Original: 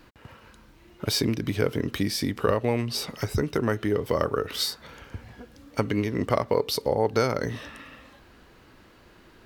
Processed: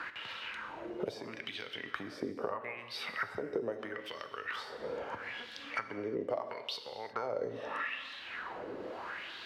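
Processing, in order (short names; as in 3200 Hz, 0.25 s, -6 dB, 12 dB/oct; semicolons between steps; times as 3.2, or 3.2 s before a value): 2.2–3.28 band shelf 4900 Hz -9 dB; compressor 4:1, threshold -39 dBFS, peak gain reduction 18 dB; wah 0.77 Hz 450–3800 Hz, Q 3.4; non-linear reverb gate 0.38 s falling, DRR 8.5 dB; three-band squash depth 70%; gain +13.5 dB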